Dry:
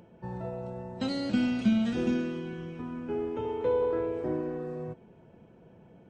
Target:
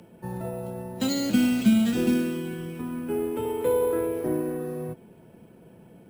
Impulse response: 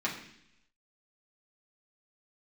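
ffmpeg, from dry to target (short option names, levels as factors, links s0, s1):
-filter_complex "[0:a]highshelf=f=2100:g=9,acrossover=split=160|390|2400[s0][s1][s2][s3];[s1]acontrast=39[s4];[s0][s4][s2][s3]amix=inputs=4:normalize=0,acrusher=samples=4:mix=1:aa=0.000001,volume=1.12"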